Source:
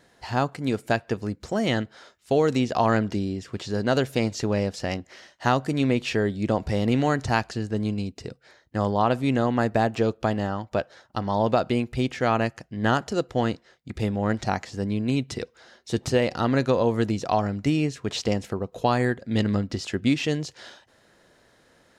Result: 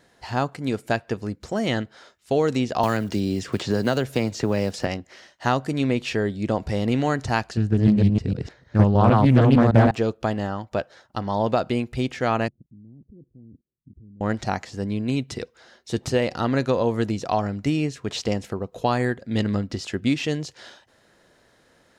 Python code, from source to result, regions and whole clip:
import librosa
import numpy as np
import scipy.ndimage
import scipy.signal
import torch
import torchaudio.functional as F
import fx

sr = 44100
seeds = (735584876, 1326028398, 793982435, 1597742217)

y = fx.chain(x, sr, fx.block_float(bits=7),
    fx.band_squash(depth_pct=100), at=(2.83, 4.87))
y = fx.chain(y, sr, fx.reverse_delay(ms=153, wet_db=0.0),
    fx.bass_treble(bass_db=10, treble_db=-6),
    fx.doppler_dist(depth_ms=0.37), at=(7.57, 9.91))
y = fx.chain(y, sr, fx.cheby2_lowpass(hz=1700.0, order=4, stop_db=80),
    fx.level_steps(step_db=23), at=(12.48, 14.21))